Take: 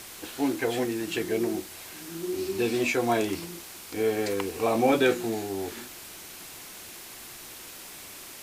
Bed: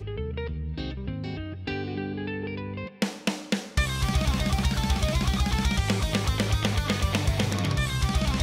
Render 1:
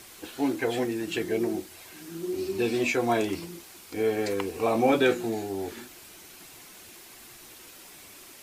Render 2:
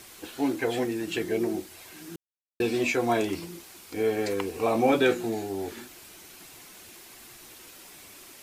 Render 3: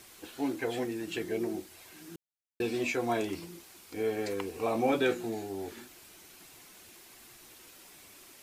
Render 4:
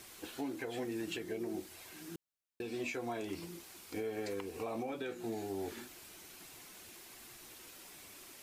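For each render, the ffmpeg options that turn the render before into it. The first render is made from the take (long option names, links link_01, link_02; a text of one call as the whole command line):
ffmpeg -i in.wav -af "afftdn=noise_reduction=6:noise_floor=-44" out.wav
ffmpeg -i in.wav -filter_complex "[0:a]asplit=3[link_01][link_02][link_03];[link_01]atrim=end=2.16,asetpts=PTS-STARTPTS,afade=type=out:start_time=2.156:duration=0.004:curve=hsin[link_04];[link_02]atrim=start=2.16:end=2.6,asetpts=PTS-STARTPTS,volume=0[link_05];[link_03]atrim=start=2.6,asetpts=PTS-STARTPTS,afade=type=in:duration=0.004:curve=hsin[link_06];[link_04][link_05][link_06]concat=n=3:v=0:a=1" out.wav
ffmpeg -i in.wav -af "volume=-5.5dB" out.wav
ffmpeg -i in.wav -af "acompressor=threshold=-33dB:ratio=6,alimiter=level_in=5.5dB:limit=-24dB:level=0:latency=1:release=390,volume=-5.5dB" out.wav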